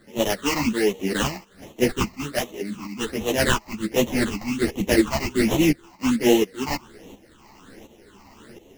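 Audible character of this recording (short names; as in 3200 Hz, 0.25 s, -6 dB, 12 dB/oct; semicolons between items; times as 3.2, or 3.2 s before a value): aliases and images of a low sample rate 2400 Hz, jitter 20%; phasing stages 8, 1.3 Hz, lowest notch 450–1500 Hz; tremolo saw up 1.4 Hz, depth 70%; a shimmering, thickened sound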